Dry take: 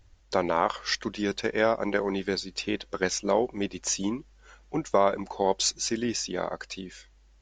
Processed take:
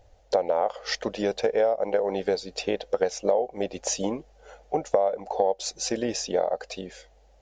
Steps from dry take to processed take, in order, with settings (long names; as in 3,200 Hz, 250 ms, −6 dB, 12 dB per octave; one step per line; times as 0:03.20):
flat-topped bell 600 Hz +16 dB 1.1 octaves
downward compressor 5 to 1, threshold −21 dBFS, peak gain reduction 16 dB